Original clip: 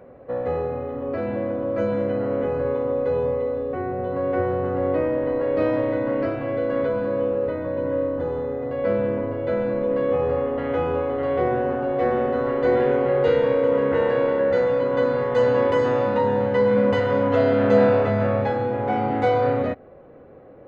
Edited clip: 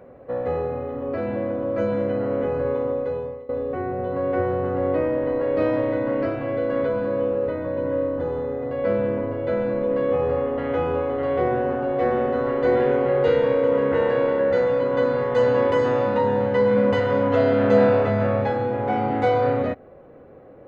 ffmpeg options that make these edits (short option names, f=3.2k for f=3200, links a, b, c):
-filter_complex "[0:a]asplit=2[a][b];[a]atrim=end=3.49,asetpts=PTS-STARTPTS,afade=t=out:st=2.84:d=0.65:silence=0.0944061[c];[b]atrim=start=3.49,asetpts=PTS-STARTPTS,afade=t=in:d=0.004:c=hsin:silence=0.0944061[d];[c][d]concat=n=2:v=0:a=1"